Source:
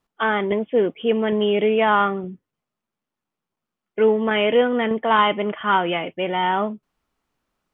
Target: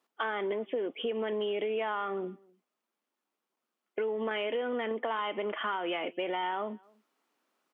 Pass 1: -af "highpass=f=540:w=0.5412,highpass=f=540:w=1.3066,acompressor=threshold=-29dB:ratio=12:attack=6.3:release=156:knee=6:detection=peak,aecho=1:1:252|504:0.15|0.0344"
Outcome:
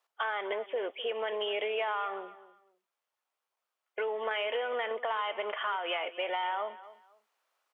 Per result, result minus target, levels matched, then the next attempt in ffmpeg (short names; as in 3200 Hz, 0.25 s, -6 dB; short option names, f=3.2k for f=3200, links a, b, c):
250 Hz band -12.5 dB; echo-to-direct +11 dB
-af "highpass=f=260:w=0.5412,highpass=f=260:w=1.3066,acompressor=threshold=-29dB:ratio=12:attack=6.3:release=156:knee=6:detection=peak,aecho=1:1:252|504:0.15|0.0344"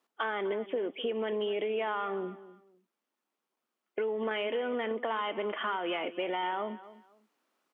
echo-to-direct +11 dB
-af "highpass=f=260:w=0.5412,highpass=f=260:w=1.3066,acompressor=threshold=-29dB:ratio=12:attack=6.3:release=156:knee=6:detection=peak,aecho=1:1:252:0.0422"